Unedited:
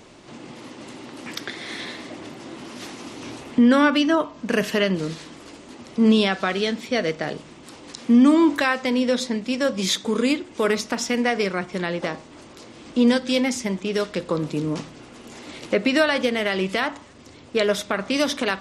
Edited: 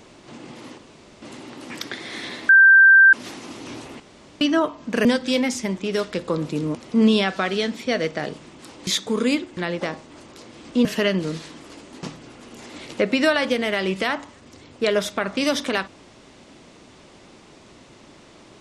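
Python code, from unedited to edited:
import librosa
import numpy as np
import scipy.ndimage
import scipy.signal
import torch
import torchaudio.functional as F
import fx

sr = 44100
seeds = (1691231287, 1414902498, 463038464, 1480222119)

y = fx.edit(x, sr, fx.insert_room_tone(at_s=0.78, length_s=0.44),
    fx.bleep(start_s=2.05, length_s=0.64, hz=1570.0, db=-7.5),
    fx.room_tone_fill(start_s=3.56, length_s=0.41),
    fx.swap(start_s=4.61, length_s=1.18, other_s=13.06, other_length_s=1.7),
    fx.cut(start_s=7.91, length_s=1.94),
    fx.cut(start_s=10.55, length_s=1.23), tone=tone)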